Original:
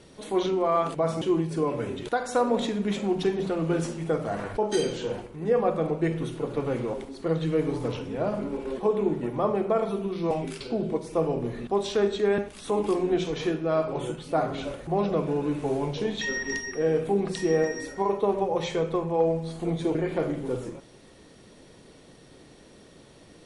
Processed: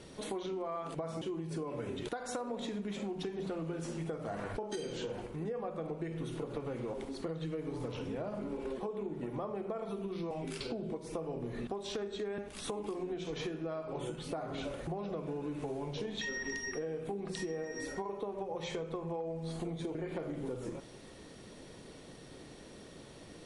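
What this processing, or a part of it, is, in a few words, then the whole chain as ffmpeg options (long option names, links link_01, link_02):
serial compression, peaks first: -af "acompressor=threshold=-31dB:ratio=6,acompressor=threshold=-37dB:ratio=2.5"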